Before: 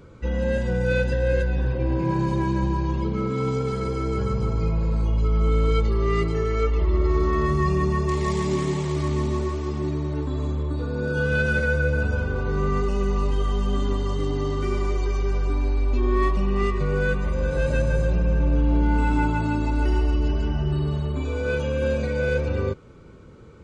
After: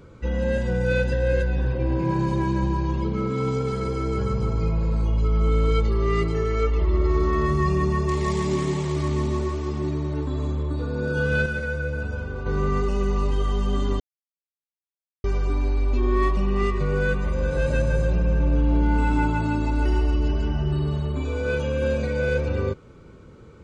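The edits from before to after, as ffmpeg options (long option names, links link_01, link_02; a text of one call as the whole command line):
ffmpeg -i in.wav -filter_complex "[0:a]asplit=5[link_01][link_02][link_03][link_04][link_05];[link_01]atrim=end=11.462[link_06];[link_02]atrim=start=11.458:end=12.462,asetpts=PTS-STARTPTS,volume=-5.5dB[link_07];[link_03]atrim=start=12.458:end=14,asetpts=PTS-STARTPTS,afade=type=out:start_time=1.538:duration=0.004:curve=hsin[link_08];[link_04]atrim=start=14:end=15.24,asetpts=PTS-STARTPTS,volume=0[link_09];[link_05]atrim=start=15.24,asetpts=PTS-STARTPTS,afade=type=in:duration=0.004:curve=hsin[link_10];[link_06][link_07]acrossfade=duration=0.004:curve1=hsin:curve2=hsin[link_11];[link_08][link_09][link_10]concat=n=3:v=0:a=1[link_12];[link_11][link_12]acrossfade=duration=0.004:curve1=hsin:curve2=hsin" out.wav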